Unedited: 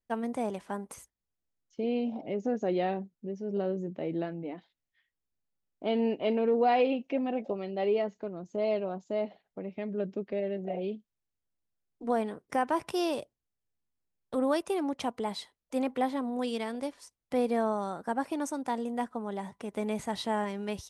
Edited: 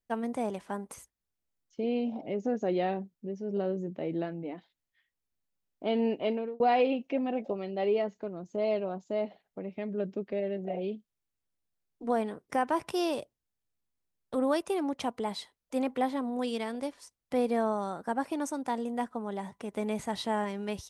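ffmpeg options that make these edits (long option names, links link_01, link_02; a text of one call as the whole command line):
ffmpeg -i in.wav -filter_complex "[0:a]asplit=2[link_01][link_02];[link_01]atrim=end=6.6,asetpts=PTS-STARTPTS,afade=type=out:start_time=6.23:duration=0.37[link_03];[link_02]atrim=start=6.6,asetpts=PTS-STARTPTS,afade=type=in:duration=0.004:curve=hsin[link_04];[link_03][link_04]concat=n=2:v=0:a=1" out.wav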